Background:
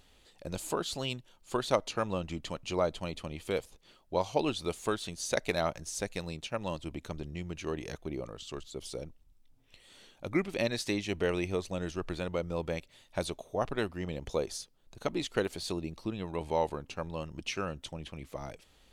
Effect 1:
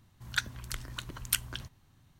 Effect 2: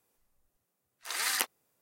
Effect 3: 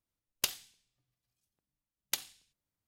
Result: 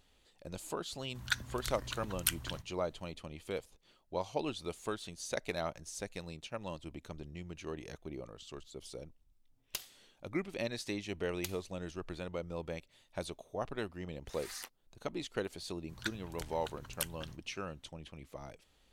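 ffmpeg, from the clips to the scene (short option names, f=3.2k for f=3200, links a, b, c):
-filter_complex "[1:a]asplit=2[a][b];[0:a]volume=-6.5dB[c];[a]atrim=end=2.19,asetpts=PTS-STARTPTS,volume=-2.5dB,afade=t=in:d=0.004:c=hsin,afade=t=out:st=2.186:d=0.004:c=hsin,adelay=940[d];[3:a]atrim=end=2.87,asetpts=PTS-STARTPTS,volume=-9dB,afade=t=in:d=0.004:c=hsin,afade=t=out:st=2.866:d=0.004:c=hsin,adelay=9310[e];[2:a]atrim=end=1.81,asetpts=PTS-STARTPTS,volume=-18dB,afade=t=in:d=0.004:c=hsin,afade=t=out:st=1.806:d=0.004:c=hsin,adelay=13230[f];[b]atrim=end=2.19,asetpts=PTS-STARTPTS,volume=-8.5dB,afade=t=in:d=0.004:c=hsin,afade=t=out:st=2.186:d=0.004:c=hsin,adelay=15680[g];[c][d][e][f][g]amix=inputs=5:normalize=0"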